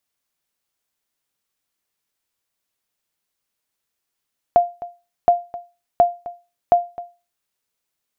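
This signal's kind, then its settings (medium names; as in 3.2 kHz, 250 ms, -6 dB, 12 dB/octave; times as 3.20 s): sonar ping 699 Hz, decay 0.29 s, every 0.72 s, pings 4, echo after 0.26 s, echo -18 dB -5 dBFS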